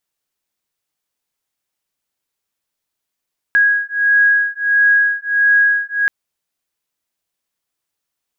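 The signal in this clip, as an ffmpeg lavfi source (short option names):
-f lavfi -i "aevalsrc='0.2*(sin(2*PI*1650*t)+sin(2*PI*1651.5*t))':d=2.53:s=44100"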